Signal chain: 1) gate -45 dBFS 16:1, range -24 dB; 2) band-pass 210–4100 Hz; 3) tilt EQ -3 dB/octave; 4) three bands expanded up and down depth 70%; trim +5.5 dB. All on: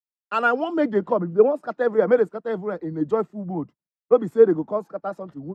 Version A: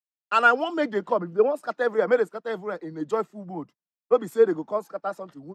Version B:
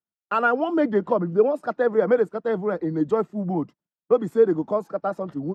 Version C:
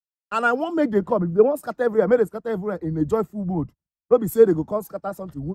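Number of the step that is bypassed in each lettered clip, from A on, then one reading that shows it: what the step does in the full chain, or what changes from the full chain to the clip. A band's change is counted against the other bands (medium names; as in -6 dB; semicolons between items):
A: 3, 2 kHz band +8.0 dB; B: 4, 500 Hz band -2.0 dB; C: 2, 125 Hz band +5.5 dB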